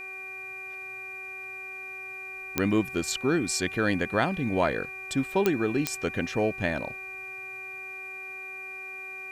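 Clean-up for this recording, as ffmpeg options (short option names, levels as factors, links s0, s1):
-af "adeclick=t=4,bandreject=f=379.5:t=h:w=4,bandreject=f=759:t=h:w=4,bandreject=f=1138.5:t=h:w=4,bandreject=f=1518:t=h:w=4,bandreject=f=1897.5:t=h:w=4,bandreject=f=2400:w=30,agate=range=0.0891:threshold=0.0251"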